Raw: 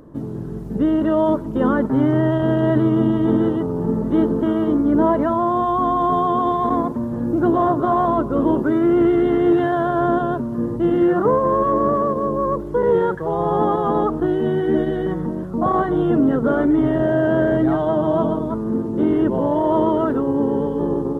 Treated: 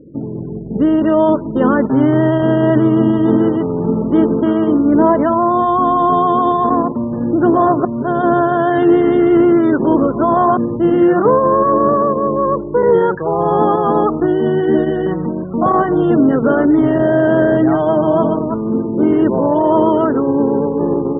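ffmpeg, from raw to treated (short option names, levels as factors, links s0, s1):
-filter_complex "[0:a]asplit=3[s0][s1][s2];[s0]atrim=end=7.852[s3];[s1]atrim=start=7.848:end=10.572,asetpts=PTS-STARTPTS,areverse[s4];[s2]atrim=start=10.568[s5];[s3][s4]acrossfade=d=0.004:c1=hsin:c2=hsin[s6];[s6][s5]acrossfade=d=0.004:c1=hsin:c2=hsin,afftfilt=real='re*gte(hypot(re,im),0.0141)':imag='im*gte(hypot(re,im),0.0141)':win_size=1024:overlap=0.75,highpass=f=120:p=1,volume=1.88"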